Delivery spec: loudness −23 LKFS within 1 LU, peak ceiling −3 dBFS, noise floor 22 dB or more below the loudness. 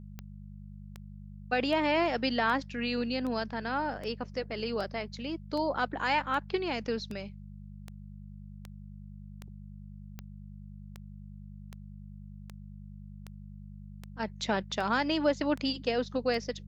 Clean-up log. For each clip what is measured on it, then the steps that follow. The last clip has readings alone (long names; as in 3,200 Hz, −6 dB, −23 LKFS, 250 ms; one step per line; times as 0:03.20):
number of clicks 22; mains hum 50 Hz; hum harmonics up to 200 Hz; level of the hum −44 dBFS; integrated loudness −31.0 LKFS; sample peak −15.0 dBFS; target loudness −23.0 LKFS
→ click removal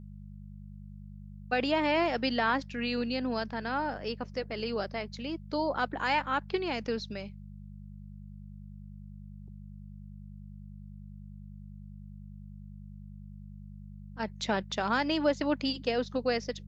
number of clicks 0; mains hum 50 Hz; hum harmonics up to 200 Hz; level of the hum −44 dBFS
→ hum removal 50 Hz, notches 4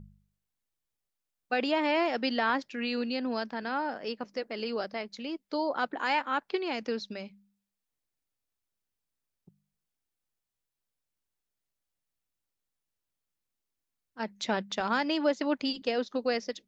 mains hum none found; integrated loudness −31.5 LKFS; sample peak −15.0 dBFS; target loudness −23.0 LKFS
→ level +8.5 dB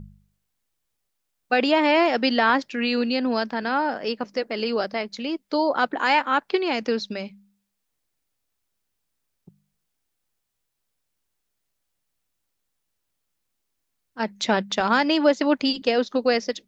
integrated loudness −23.0 LKFS; sample peak −6.5 dBFS; background noise floor −78 dBFS